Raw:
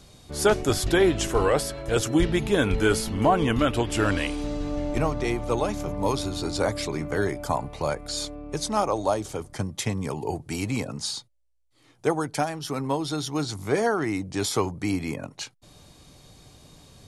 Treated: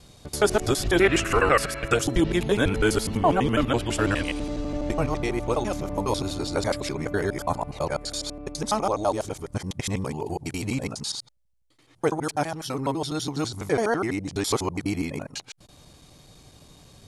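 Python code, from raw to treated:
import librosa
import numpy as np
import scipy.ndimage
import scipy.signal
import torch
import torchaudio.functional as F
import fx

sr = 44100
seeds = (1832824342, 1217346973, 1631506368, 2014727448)

y = fx.local_reverse(x, sr, ms=83.0)
y = fx.spec_box(y, sr, start_s=1.01, length_s=0.94, low_hz=1100.0, high_hz=2900.0, gain_db=10)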